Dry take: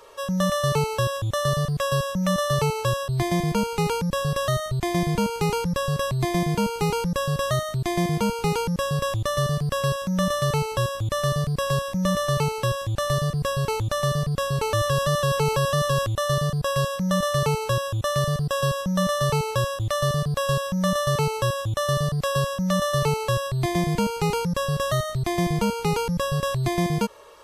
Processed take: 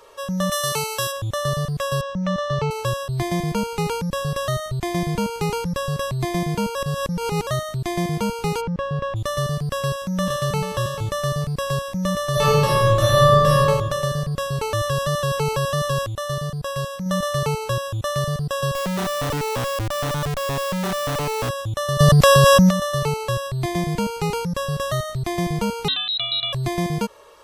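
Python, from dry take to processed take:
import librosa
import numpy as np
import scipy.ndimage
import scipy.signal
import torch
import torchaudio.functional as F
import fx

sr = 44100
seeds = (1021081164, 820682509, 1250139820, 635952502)

y = fx.tilt_eq(x, sr, slope=3.0, at=(0.51, 1.11), fade=0.02)
y = fx.air_absorb(y, sr, metres=150.0, at=(2.01, 2.71))
y = fx.lowpass(y, sr, hz=2300.0, slope=12, at=(8.6, 9.15), fade=0.02)
y = fx.echo_throw(y, sr, start_s=9.82, length_s=0.84, ms=440, feedback_pct=15, wet_db=-9.5)
y = fx.reverb_throw(y, sr, start_s=12.31, length_s=1.29, rt60_s=1.4, drr_db=-7.5)
y = fx.schmitt(y, sr, flips_db=-40.0, at=(18.75, 21.49))
y = fx.env_flatten(y, sr, amount_pct=100, at=(21.99, 22.69), fade=0.02)
y = fx.freq_invert(y, sr, carrier_hz=4000, at=(25.88, 26.53))
y = fx.edit(y, sr, fx.reverse_span(start_s=6.75, length_s=0.72),
    fx.clip_gain(start_s=16.06, length_s=1.0, db=-3.0), tone=tone)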